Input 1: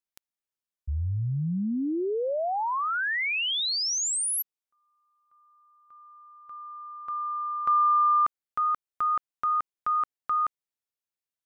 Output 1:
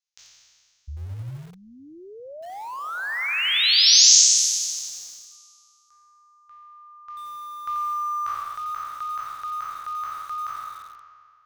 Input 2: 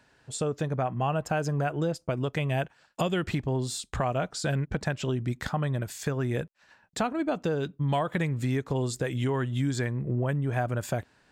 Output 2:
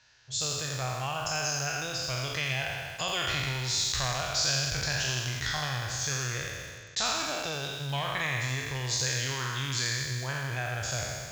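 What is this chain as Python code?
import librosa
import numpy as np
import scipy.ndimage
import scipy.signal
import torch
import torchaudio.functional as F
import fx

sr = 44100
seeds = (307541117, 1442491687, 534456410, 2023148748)

y = fx.spec_trails(x, sr, decay_s=2.02)
y = fx.curve_eq(y, sr, hz=(130.0, 190.0, 6500.0, 9300.0), db=(0, -16, 14, -18))
y = fx.echo_crushed(y, sr, ms=86, feedback_pct=35, bits=6, wet_db=-8.0)
y = y * 10.0 ** (-5.5 / 20.0)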